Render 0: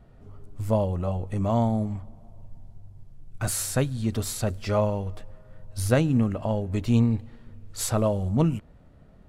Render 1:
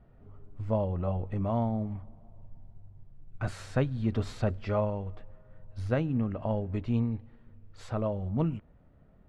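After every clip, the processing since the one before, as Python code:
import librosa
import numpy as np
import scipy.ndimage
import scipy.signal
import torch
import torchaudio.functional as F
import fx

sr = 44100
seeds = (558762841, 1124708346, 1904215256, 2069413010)

y = scipy.signal.sosfilt(scipy.signal.butter(2, 2600.0, 'lowpass', fs=sr, output='sos'), x)
y = fx.rider(y, sr, range_db=10, speed_s=0.5)
y = F.gain(torch.from_numpy(y), -4.5).numpy()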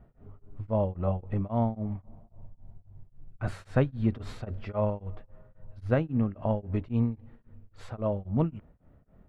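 y = fx.peak_eq(x, sr, hz=6500.0, db=-8.0, octaves=1.9)
y = y * np.abs(np.cos(np.pi * 3.7 * np.arange(len(y)) / sr))
y = F.gain(torch.from_numpy(y), 3.5).numpy()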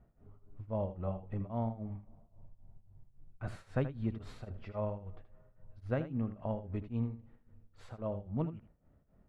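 y = x + 10.0 ** (-12.0 / 20.0) * np.pad(x, (int(79 * sr / 1000.0), 0))[:len(x)]
y = F.gain(torch.from_numpy(y), -8.5).numpy()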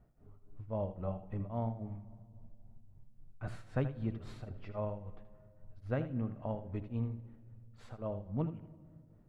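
y = fx.room_shoebox(x, sr, seeds[0], volume_m3=3600.0, walls='mixed', distance_m=0.39)
y = F.gain(torch.from_numpy(y), -1.0).numpy()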